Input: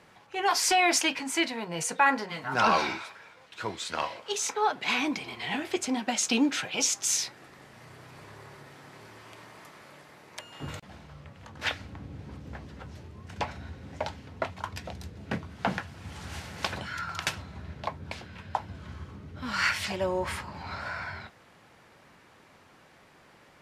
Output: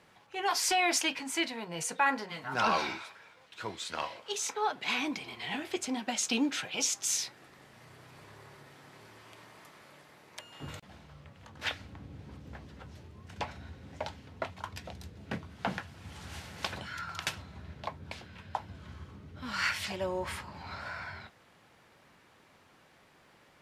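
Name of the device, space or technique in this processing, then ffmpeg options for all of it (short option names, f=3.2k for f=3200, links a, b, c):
presence and air boost: -af "equalizer=f=3.4k:t=o:w=0.77:g=2,highshelf=f=12k:g=5,volume=-5dB"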